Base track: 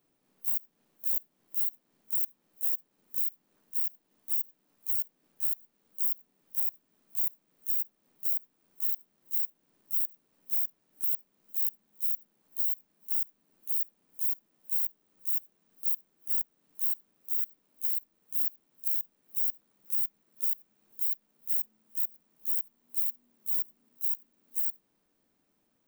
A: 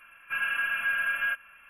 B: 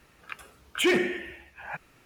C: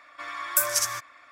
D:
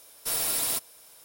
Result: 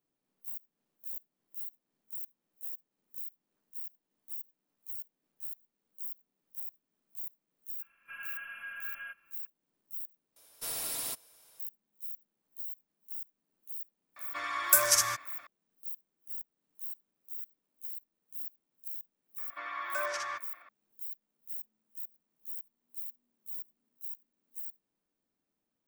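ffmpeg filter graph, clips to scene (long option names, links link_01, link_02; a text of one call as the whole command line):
ffmpeg -i bed.wav -i cue0.wav -i cue1.wav -i cue2.wav -i cue3.wav -filter_complex "[3:a]asplit=2[link_01][link_02];[0:a]volume=-11.5dB[link_03];[link_02]highpass=330,lowpass=2700[link_04];[link_03]asplit=2[link_05][link_06];[link_05]atrim=end=10.364[link_07];[4:a]atrim=end=1.24,asetpts=PTS-STARTPTS,volume=-8.5dB[link_08];[link_06]atrim=start=11.596[link_09];[1:a]atrim=end=1.69,asetpts=PTS-STARTPTS,volume=-15.5dB,afade=type=in:duration=0.004:curve=hsin,afade=type=out:start_time=1.686:duration=0.004:curve=hsin,adelay=343098S[link_10];[link_01]atrim=end=1.31,asetpts=PTS-STARTPTS,afade=type=in:duration=0.004:curve=hsin,afade=type=out:start_time=1.306:duration=0.004:curve=hsin,adelay=14160[link_11];[link_04]atrim=end=1.31,asetpts=PTS-STARTPTS,volume=-3dB,afade=type=in:duration=0.004:curve=hsin,afade=type=out:start_time=1.306:duration=0.004:curve=hsin,adelay=19380[link_12];[link_07][link_08]acrossfade=duration=0.004:curve1=hsin:curve2=hsin[link_13];[link_13][link_09]acrossfade=duration=0.004:curve1=hsin:curve2=hsin[link_14];[link_14][link_10][link_11][link_12]amix=inputs=4:normalize=0" out.wav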